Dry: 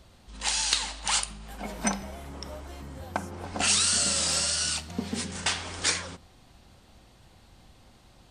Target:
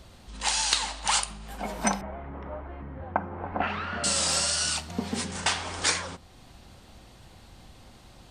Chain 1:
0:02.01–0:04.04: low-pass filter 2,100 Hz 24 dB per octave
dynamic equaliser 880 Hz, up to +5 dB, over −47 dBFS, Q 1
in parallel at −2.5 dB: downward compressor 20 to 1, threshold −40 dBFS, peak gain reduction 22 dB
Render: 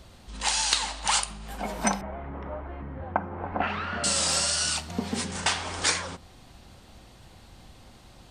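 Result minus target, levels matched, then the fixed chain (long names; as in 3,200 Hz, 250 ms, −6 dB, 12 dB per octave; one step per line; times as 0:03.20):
downward compressor: peak gain reduction −8 dB
0:02.01–0:04.04: low-pass filter 2,100 Hz 24 dB per octave
dynamic equaliser 880 Hz, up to +5 dB, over −47 dBFS, Q 1
in parallel at −2.5 dB: downward compressor 20 to 1, threshold −48.5 dBFS, peak gain reduction 30.5 dB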